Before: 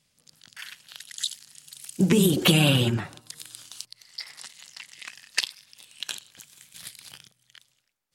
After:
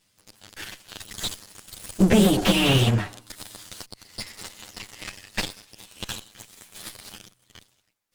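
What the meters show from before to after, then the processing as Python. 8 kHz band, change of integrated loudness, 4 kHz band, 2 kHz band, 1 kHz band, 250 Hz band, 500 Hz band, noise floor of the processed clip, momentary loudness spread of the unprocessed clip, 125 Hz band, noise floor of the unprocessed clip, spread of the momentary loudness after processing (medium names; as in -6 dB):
-0.5 dB, +1.5 dB, 0.0 dB, +1.0 dB, +5.5 dB, +2.5 dB, +2.5 dB, -68 dBFS, 23 LU, +1.0 dB, -71 dBFS, 22 LU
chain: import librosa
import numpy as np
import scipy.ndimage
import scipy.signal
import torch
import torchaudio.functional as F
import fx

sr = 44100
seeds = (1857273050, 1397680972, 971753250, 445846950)

y = fx.lower_of_two(x, sr, delay_ms=9.7)
y = fx.slew_limit(y, sr, full_power_hz=170.0)
y = F.gain(torch.from_numpy(y), 4.5).numpy()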